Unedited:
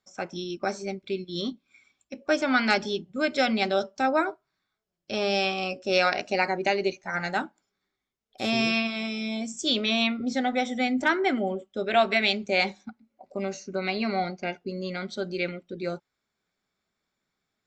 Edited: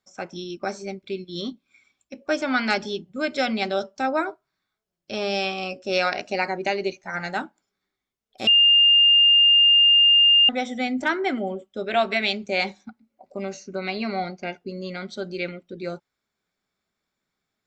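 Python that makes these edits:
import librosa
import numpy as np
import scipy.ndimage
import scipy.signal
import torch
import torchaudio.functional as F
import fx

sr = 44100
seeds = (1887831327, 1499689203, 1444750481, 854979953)

y = fx.edit(x, sr, fx.bleep(start_s=8.47, length_s=2.02, hz=2810.0, db=-12.0), tone=tone)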